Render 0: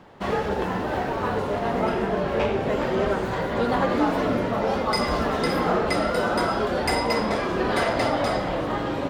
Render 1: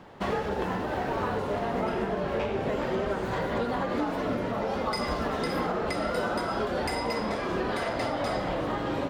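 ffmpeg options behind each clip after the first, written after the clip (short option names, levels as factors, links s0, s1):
-af "alimiter=limit=0.106:level=0:latency=1:release=462"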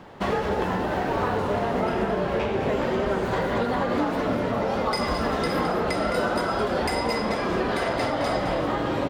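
-af "aecho=1:1:214:0.355,volume=1.58"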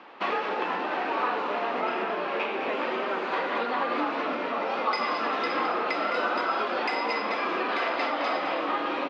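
-af "highpass=f=300:w=0.5412,highpass=f=300:w=1.3066,equalizer=f=410:t=q:w=4:g=-6,equalizer=f=600:t=q:w=4:g=-4,equalizer=f=1200:t=q:w=4:g=5,equalizer=f=2500:t=q:w=4:g=8,lowpass=f=4800:w=0.5412,lowpass=f=4800:w=1.3066,volume=0.841"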